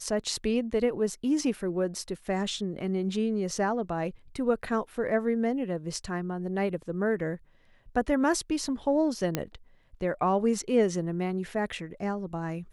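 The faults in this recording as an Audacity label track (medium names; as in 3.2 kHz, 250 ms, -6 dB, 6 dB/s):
9.350000	9.350000	pop -12 dBFS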